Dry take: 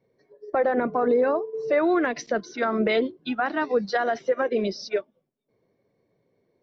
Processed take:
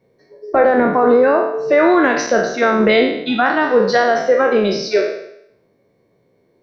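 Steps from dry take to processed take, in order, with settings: spectral sustain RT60 0.76 s; trim +8 dB

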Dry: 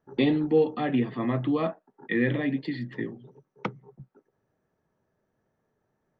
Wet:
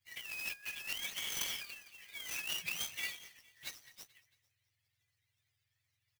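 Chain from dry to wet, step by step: spectrum inverted on a logarithmic axis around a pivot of 880 Hz; on a send: feedback delay 224 ms, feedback 50%, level -23 dB; on the sum: spectral replace 1.21–1.59 s, 990–4100 Hz before; compressor with a negative ratio -36 dBFS, ratio -1; elliptic band-stop 110–2100 Hz; sampling jitter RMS 0.027 ms; trim -3 dB

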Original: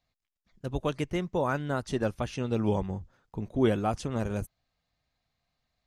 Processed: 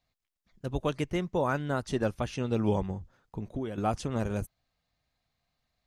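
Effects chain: 2.91–3.78 s: compression 16:1, threshold -31 dBFS, peak gain reduction 13.5 dB

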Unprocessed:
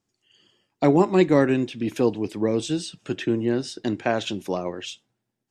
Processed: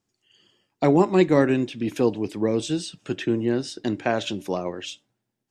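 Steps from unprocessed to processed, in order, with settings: de-hum 291.9 Hz, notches 2

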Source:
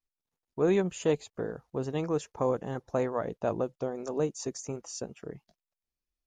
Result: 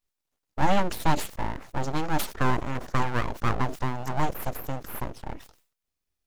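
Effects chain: full-wave rectifier; decay stretcher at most 120 dB/s; trim +6.5 dB

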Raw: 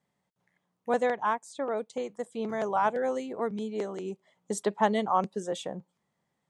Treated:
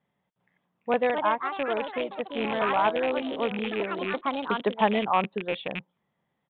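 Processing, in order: rattle on loud lows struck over -39 dBFS, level -23 dBFS; ever faster or slower copies 438 ms, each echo +4 st, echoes 3, each echo -6 dB; resampled via 8 kHz; trim +2 dB

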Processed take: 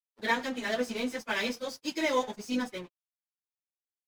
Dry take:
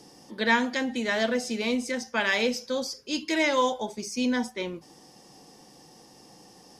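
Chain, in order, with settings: delay 162 ms -20 dB; crossover distortion -39 dBFS; plain phase-vocoder stretch 0.6×

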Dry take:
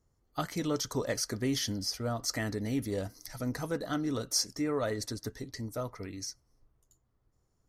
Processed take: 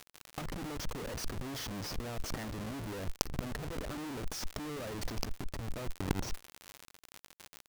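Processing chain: Schmitt trigger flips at -37 dBFS; crackle 67 per s -53 dBFS; compressor with a negative ratio -44 dBFS, ratio -0.5; trim +10.5 dB

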